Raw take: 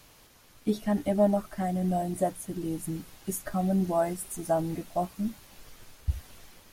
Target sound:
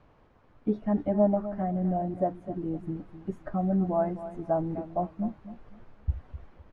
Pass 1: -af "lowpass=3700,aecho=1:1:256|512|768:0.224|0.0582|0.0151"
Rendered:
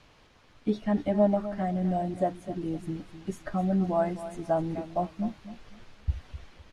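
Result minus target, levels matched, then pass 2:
4,000 Hz band +16.0 dB
-af "lowpass=1200,aecho=1:1:256|512|768:0.224|0.0582|0.0151"

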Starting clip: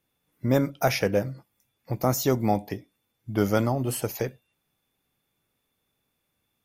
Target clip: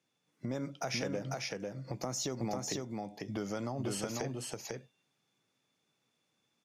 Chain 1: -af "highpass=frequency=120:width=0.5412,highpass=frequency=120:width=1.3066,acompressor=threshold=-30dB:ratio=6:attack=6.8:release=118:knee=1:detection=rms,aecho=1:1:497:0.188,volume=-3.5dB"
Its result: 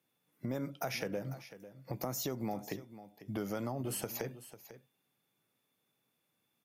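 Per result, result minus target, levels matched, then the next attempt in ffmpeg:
echo-to-direct −12 dB; 8,000 Hz band −3.5 dB
-af "highpass=frequency=120:width=0.5412,highpass=frequency=120:width=1.3066,acompressor=threshold=-30dB:ratio=6:attack=6.8:release=118:knee=1:detection=rms,aecho=1:1:497:0.75,volume=-3.5dB"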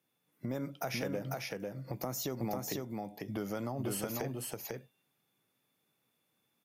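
8,000 Hz band −2.5 dB
-af "highpass=frequency=120:width=0.5412,highpass=frequency=120:width=1.3066,acompressor=threshold=-30dB:ratio=6:attack=6.8:release=118:knee=1:detection=rms,lowpass=frequency=6500:width_type=q:width=1.8,aecho=1:1:497:0.75,volume=-3.5dB"

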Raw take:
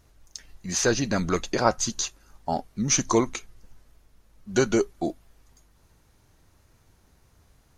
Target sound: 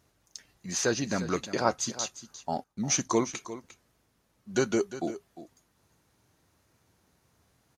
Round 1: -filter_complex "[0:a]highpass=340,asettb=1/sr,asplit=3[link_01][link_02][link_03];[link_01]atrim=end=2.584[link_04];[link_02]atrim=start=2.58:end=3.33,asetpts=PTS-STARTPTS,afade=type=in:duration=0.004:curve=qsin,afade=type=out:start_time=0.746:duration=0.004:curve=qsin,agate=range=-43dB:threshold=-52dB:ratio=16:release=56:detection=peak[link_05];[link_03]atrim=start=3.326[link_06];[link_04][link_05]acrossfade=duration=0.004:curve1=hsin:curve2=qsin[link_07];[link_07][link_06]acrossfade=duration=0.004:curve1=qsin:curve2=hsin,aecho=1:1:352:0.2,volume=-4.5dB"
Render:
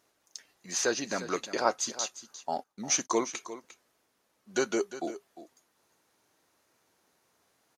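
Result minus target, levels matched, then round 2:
125 Hz band −11.5 dB
-filter_complex "[0:a]highpass=110,asettb=1/sr,asplit=3[link_01][link_02][link_03];[link_01]atrim=end=2.584[link_04];[link_02]atrim=start=2.58:end=3.33,asetpts=PTS-STARTPTS,afade=type=in:duration=0.004:curve=qsin,afade=type=out:start_time=0.746:duration=0.004:curve=qsin,agate=range=-43dB:threshold=-52dB:ratio=16:release=56:detection=peak[link_05];[link_03]atrim=start=3.326[link_06];[link_04][link_05]acrossfade=duration=0.004:curve1=hsin:curve2=qsin[link_07];[link_07][link_06]acrossfade=duration=0.004:curve1=qsin:curve2=hsin,aecho=1:1:352:0.2,volume=-4.5dB"

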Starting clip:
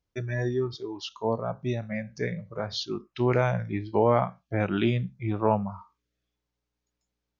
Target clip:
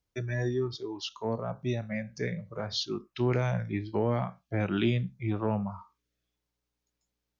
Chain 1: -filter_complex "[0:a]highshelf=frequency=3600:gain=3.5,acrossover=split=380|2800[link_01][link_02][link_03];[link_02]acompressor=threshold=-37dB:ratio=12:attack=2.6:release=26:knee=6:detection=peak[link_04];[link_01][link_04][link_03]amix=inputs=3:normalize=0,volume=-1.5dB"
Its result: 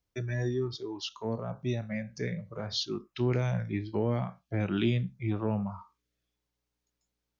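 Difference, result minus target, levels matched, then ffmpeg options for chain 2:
downward compressor: peak gain reduction +5.5 dB
-filter_complex "[0:a]highshelf=frequency=3600:gain=3.5,acrossover=split=380|2800[link_01][link_02][link_03];[link_02]acompressor=threshold=-31dB:ratio=12:attack=2.6:release=26:knee=6:detection=peak[link_04];[link_01][link_04][link_03]amix=inputs=3:normalize=0,volume=-1.5dB"

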